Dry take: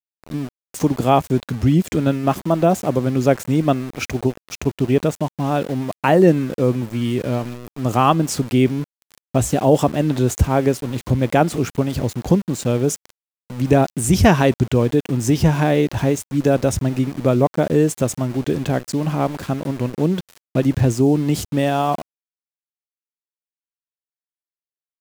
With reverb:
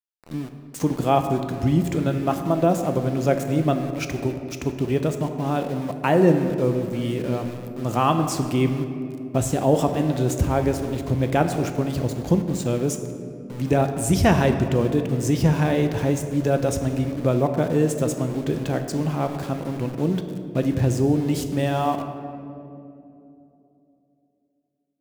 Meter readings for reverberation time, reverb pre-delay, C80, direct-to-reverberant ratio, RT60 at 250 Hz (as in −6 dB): 2.9 s, 6 ms, 9.0 dB, 6.0 dB, 3.9 s